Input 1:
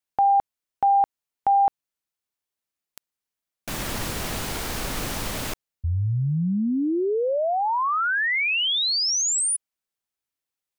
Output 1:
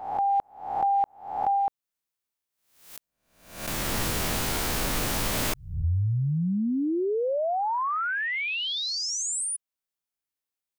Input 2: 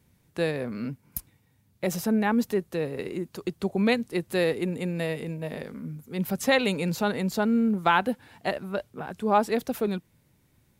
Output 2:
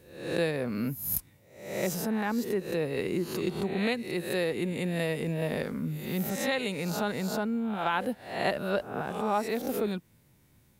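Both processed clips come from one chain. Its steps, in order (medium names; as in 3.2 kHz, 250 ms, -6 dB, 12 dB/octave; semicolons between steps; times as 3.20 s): reverse spectral sustain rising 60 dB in 0.60 s; in parallel at -0.5 dB: compression, threshold -31 dBFS; on the sum: treble shelf 11 kHz +3.5 dB; gain riding within 5 dB 0.5 s; trim -7 dB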